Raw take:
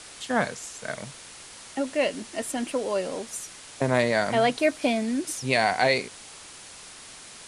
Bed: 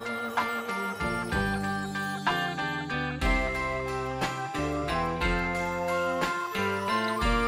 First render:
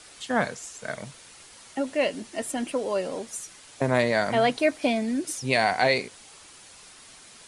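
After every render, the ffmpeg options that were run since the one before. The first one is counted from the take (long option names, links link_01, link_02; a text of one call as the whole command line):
ffmpeg -i in.wav -af "afftdn=noise_reduction=6:noise_floor=-45" out.wav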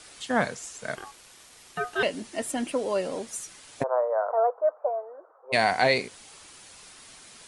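ffmpeg -i in.wav -filter_complex "[0:a]asettb=1/sr,asplit=3[link_01][link_02][link_03];[link_01]atrim=end=0.954[link_04];[link_02]atrim=start=0.95:end=2.03,asetpts=PTS-STARTPTS,afade=type=in:duration=0.004:curve=qsin,afade=type=out:start_time=1.076:duration=0.004:curve=qsin,aeval=exprs='val(0)*sin(2*PI*980*n/s)':channel_layout=same[link_05];[link_03]atrim=start=2.026[link_06];[link_04][link_05]acrossfade=duration=0.004:curve1=hsin:curve2=qsin[link_07];[link_07][link_06]acrossfade=duration=0.004:curve1=qsin:curve2=hsin,asplit=3[link_08][link_09][link_10];[link_08]afade=type=out:start_time=3.82:duration=0.02[link_11];[link_09]asuperpass=centerf=790:order=12:qfactor=0.89,afade=type=in:start_time=3.82:duration=0.02,afade=type=out:start_time=5.52:duration=0.02[link_12];[link_10]afade=type=in:start_time=5.52:duration=0.02[link_13];[link_11][link_12][link_13]amix=inputs=3:normalize=0" out.wav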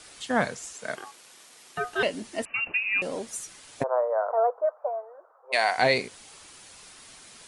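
ffmpeg -i in.wav -filter_complex "[0:a]asettb=1/sr,asplit=3[link_01][link_02][link_03];[link_01]atrim=end=0.734[link_04];[link_02]atrim=start=0.73:end=1.78,asetpts=PTS-STARTPTS,afade=type=in:duration=0.004:curve=qsin,afade=type=out:start_time=1.046:duration=0.004:curve=qsin,highpass=190[link_05];[link_03]atrim=start=1.776[link_06];[link_04][link_05]acrossfade=duration=0.004:curve1=hsin:curve2=qsin[link_07];[link_07][link_06]acrossfade=duration=0.004:curve1=qsin:curve2=hsin,asettb=1/sr,asplit=3[link_08][link_09][link_10];[link_08]atrim=end=2.454[link_11];[link_09]atrim=start=2.45:end=3.02,asetpts=PTS-STARTPTS,afade=type=in:duration=0.004:curve=qsin,afade=type=out:start_time=0.566:duration=0.004:curve=qsin,lowpass=frequency=2600:width_type=q:width=0.5098,lowpass=frequency=2600:width_type=q:width=0.6013,lowpass=frequency=2600:width_type=q:width=0.9,lowpass=frequency=2600:width_type=q:width=2.563,afreqshift=-3000[link_12];[link_10]atrim=start=3.016[link_13];[link_11][link_12]acrossfade=duration=0.004:curve1=hsin:curve2=qsin[link_14];[link_14][link_13]acrossfade=duration=0.004:curve1=qsin:curve2=hsin,asplit=3[link_15][link_16][link_17];[link_15]afade=type=out:start_time=4.65:duration=0.02[link_18];[link_16]highpass=560,afade=type=in:start_time=4.65:duration=0.02,afade=type=out:start_time=5.77:duration=0.02[link_19];[link_17]afade=type=in:start_time=5.77:duration=0.02[link_20];[link_18][link_19][link_20]amix=inputs=3:normalize=0" out.wav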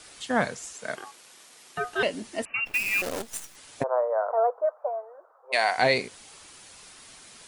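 ffmpeg -i in.wav -filter_complex "[0:a]asplit=3[link_01][link_02][link_03];[link_01]afade=type=out:start_time=2.65:duration=0.02[link_04];[link_02]acrusher=bits=6:dc=4:mix=0:aa=0.000001,afade=type=in:start_time=2.65:duration=0.02,afade=type=out:start_time=3.55:duration=0.02[link_05];[link_03]afade=type=in:start_time=3.55:duration=0.02[link_06];[link_04][link_05][link_06]amix=inputs=3:normalize=0" out.wav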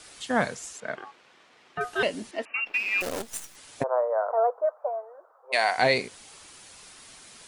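ffmpeg -i in.wav -filter_complex "[0:a]asettb=1/sr,asplit=3[link_01][link_02][link_03];[link_01]atrim=end=0.804[link_04];[link_02]atrim=start=0.8:end=1.81,asetpts=PTS-STARTPTS,afade=type=in:duration=0.004:curve=qsin,afade=type=out:start_time=1.006:duration=0.004:curve=qsin,lowpass=2700[link_05];[link_03]atrim=start=1.806[link_06];[link_04][link_05]acrossfade=duration=0.004:curve1=hsin:curve2=qsin[link_07];[link_07][link_06]acrossfade=duration=0.004:curve1=qsin:curve2=hsin,asettb=1/sr,asplit=3[link_08][link_09][link_10];[link_08]atrim=end=2.314[link_11];[link_09]atrim=start=2.31:end=3.01,asetpts=PTS-STARTPTS,afade=type=in:duration=0.004:curve=qsin,afade=type=out:start_time=0.696:duration=0.004:curve=qsin,acrossover=split=240 4900:gain=0.0708 1 0.0708[link_12][link_13][link_14];[link_12][link_13][link_14]amix=inputs=3:normalize=0[link_15];[link_10]atrim=start=3.006[link_16];[link_11][link_15]acrossfade=duration=0.004:curve1=hsin:curve2=qsin[link_17];[link_17][link_16]acrossfade=duration=0.004:curve1=qsin:curve2=hsin" out.wav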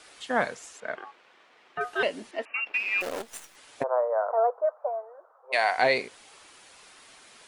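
ffmpeg -i in.wav -af "bass=frequency=250:gain=-10,treble=frequency=4000:gain=-7" out.wav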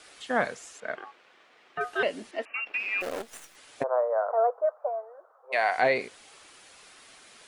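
ffmpeg -i in.wav -filter_complex "[0:a]acrossover=split=2600[link_01][link_02];[link_02]acompressor=threshold=-39dB:ratio=4:attack=1:release=60[link_03];[link_01][link_03]amix=inputs=2:normalize=0,equalizer=frequency=940:width=5.2:gain=-3.5" out.wav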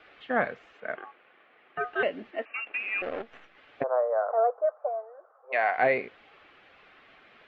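ffmpeg -i in.wav -af "lowpass=frequency=2800:width=0.5412,lowpass=frequency=2800:width=1.3066,bandreject=frequency=960:width=11" out.wav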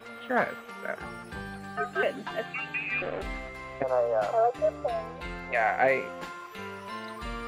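ffmpeg -i in.wav -i bed.wav -filter_complex "[1:a]volume=-11dB[link_01];[0:a][link_01]amix=inputs=2:normalize=0" out.wav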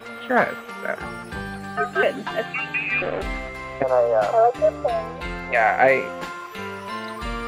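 ffmpeg -i in.wav -af "volume=7.5dB" out.wav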